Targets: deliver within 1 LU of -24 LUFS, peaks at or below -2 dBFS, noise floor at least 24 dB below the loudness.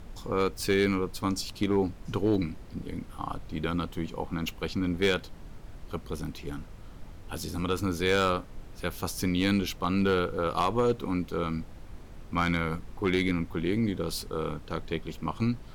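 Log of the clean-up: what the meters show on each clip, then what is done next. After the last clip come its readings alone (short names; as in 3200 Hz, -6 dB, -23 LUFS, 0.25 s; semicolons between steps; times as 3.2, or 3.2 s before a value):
clipped 0.2%; flat tops at -17.5 dBFS; noise floor -46 dBFS; noise floor target -54 dBFS; loudness -30.0 LUFS; peak -17.5 dBFS; loudness target -24.0 LUFS
-> clip repair -17.5 dBFS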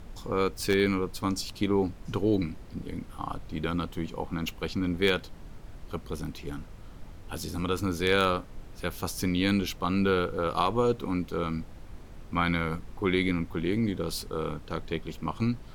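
clipped 0.0%; noise floor -46 dBFS; noise floor target -54 dBFS
-> noise print and reduce 8 dB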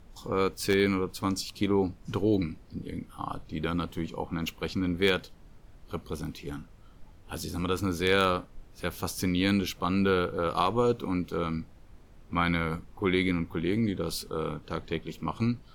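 noise floor -53 dBFS; noise floor target -54 dBFS
-> noise print and reduce 6 dB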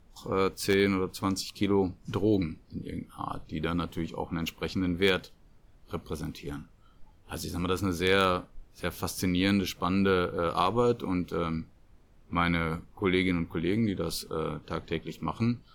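noise floor -58 dBFS; loudness -29.5 LUFS; peak -10.0 dBFS; loudness target -24.0 LUFS
-> gain +5.5 dB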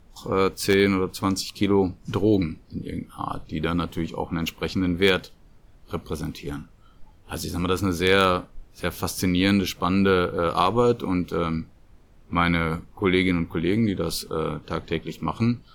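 loudness -24.0 LUFS; peak -4.5 dBFS; noise floor -53 dBFS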